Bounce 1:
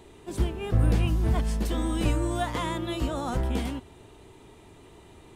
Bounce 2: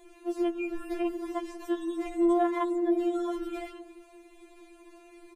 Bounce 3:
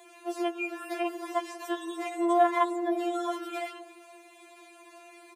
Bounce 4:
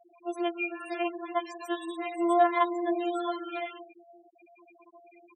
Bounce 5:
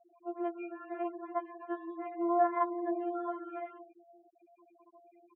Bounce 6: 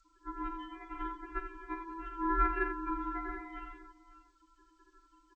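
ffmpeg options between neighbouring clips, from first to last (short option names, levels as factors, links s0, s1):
-filter_complex "[0:a]acrossover=split=530|2200[s0][s1][s2];[s0]aecho=1:1:187:0.562[s3];[s2]acompressor=threshold=0.00251:ratio=5[s4];[s3][s1][s4]amix=inputs=3:normalize=0,afftfilt=real='re*4*eq(mod(b,16),0)':imag='im*4*eq(mod(b,16),0)':win_size=2048:overlap=0.75"
-af "highpass=f=460:w=0.5412,highpass=f=460:w=1.3066,volume=2.11"
-af "afftfilt=real='re*gte(hypot(re,im),0.0158)':imag='im*gte(hypot(re,im),0.0158)':win_size=1024:overlap=0.75,adynamicequalizer=threshold=0.01:dfrequency=2400:dqfactor=0.7:tfrequency=2400:tqfactor=0.7:attack=5:release=100:ratio=0.375:range=2:mode=boostabove:tftype=highshelf"
-af "lowpass=f=1600:w=0.5412,lowpass=f=1600:w=1.3066,volume=0.562"
-af "aeval=exprs='val(0)*sin(2*PI*660*n/s)':c=same,aecho=1:1:47|84|86|542:0.316|0.376|0.106|0.112" -ar 16000 -c:a g722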